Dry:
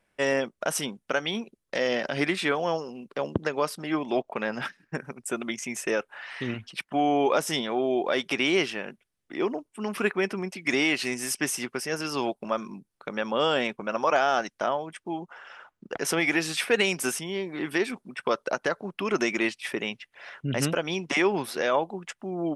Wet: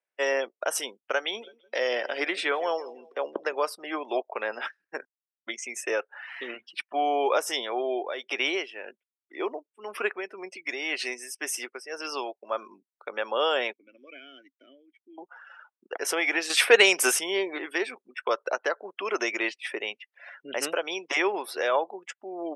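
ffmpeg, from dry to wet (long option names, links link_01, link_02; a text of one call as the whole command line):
ffmpeg -i in.wav -filter_complex "[0:a]asplit=3[link_01][link_02][link_03];[link_01]afade=type=out:start_time=1.4:duration=0.02[link_04];[link_02]aecho=1:1:164|328|492|656:0.112|0.0505|0.0227|0.0102,afade=type=in:start_time=1.4:duration=0.02,afade=type=out:start_time=3.63:duration=0.02[link_05];[link_03]afade=type=in:start_time=3.63:duration=0.02[link_06];[link_04][link_05][link_06]amix=inputs=3:normalize=0,asplit=3[link_07][link_08][link_09];[link_07]afade=type=out:start_time=7.81:duration=0.02[link_10];[link_08]tremolo=f=1.9:d=0.59,afade=type=in:start_time=7.81:duration=0.02,afade=type=out:start_time=12.63:duration=0.02[link_11];[link_09]afade=type=in:start_time=12.63:duration=0.02[link_12];[link_10][link_11][link_12]amix=inputs=3:normalize=0,asettb=1/sr,asplit=3[link_13][link_14][link_15];[link_13]atrim=end=13.734[link_16];[link_14]atrim=start=13.73:end=15.18,asetpts=PTS-STARTPTS,afade=type=in:duration=0.004:curve=qsin,afade=type=out:start_time=1.446:duration=0.004:curve=qsin,asplit=3[link_17][link_18][link_19];[link_17]bandpass=frequency=270:width_type=q:width=8,volume=0dB[link_20];[link_18]bandpass=frequency=2290:width_type=q:width=8,volume=-6dB[link_21];[link_19]bandpass=frequency=3010:width_type=q:width=8,volume=-9dB[link_22];[link_20][link_21][link_22]amix=inputs=3:normalize=0[link_23];[link_15]atrim=start=15.176[link_24];[link_16][link_23]acrossfade=duration=0.004:curve1=hsin:curve2=qsin[link_25];[link_25][link_24]acrossfade=duration=0.004:curve1=qsin:curve2=hsin,asplit=5[link_26][link_27][link_28][link_29][link_30];[link_26]atrim=end=5.05,asetpts=PTS-STARTPTS,afade=type=out:start_time=5.046:duration=0.004:curve=hsin[link_31];[link_27]atrim=start=5.05:end=5.47,asetpts=PTS-STARTPTS,volume=0[link_32];[link_28]atrim=start=5.47:end=16.502,asetpts=PTS-STARTPTS,afade=type=in:duration=0.004:curve=hsin[link_33];[link_29]atrim=start=16.498:end=17.582,asetpts=PTS-STARTPTS,volume=7dB[link_34];[link_30]atrim=start=17.578[link_35];[link_31][link_32][link_33]concat=n=3:v=0:a=1[link_36];[link_36][link_34]acrossfade=duration=0.004:curve1=hsin:curve2=hsin[link_37];[link_37][link_35]acrossfade=duration=0.004:curve1=hsin:curve2=hsin,afftdn=noise_reduction=18:noise_floor=-43,highpass=frequency=390:width=0.5412,highpass=frequency=390:width=1.3066" out.wav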